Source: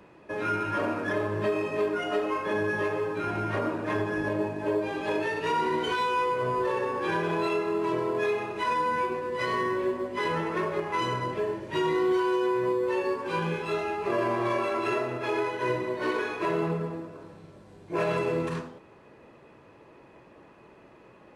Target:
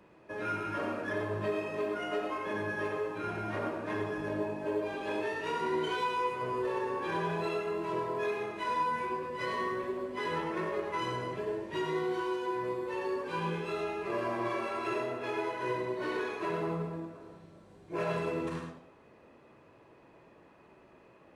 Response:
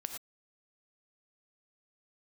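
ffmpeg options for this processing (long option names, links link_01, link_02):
-filter_complex "[0:a]flanger=delay=5.4:depth=9.1:regen=-80:speed=0.5:shape=triangular[link_01];[1:a]atrim=start_sample=2205[link_02];[link_01][link_02]afir=irnorm=-1:irlink=0"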